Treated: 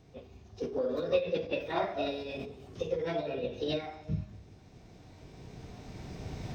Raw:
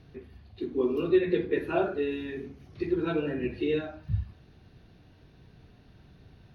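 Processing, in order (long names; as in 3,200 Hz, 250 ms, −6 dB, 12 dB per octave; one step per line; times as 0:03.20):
camcorder AGC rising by 8.2 dB per second
reverb whose tail is shaped and stops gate 460 ms falling, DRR 11 dB
formants moved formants +6 semitones
level −5 dB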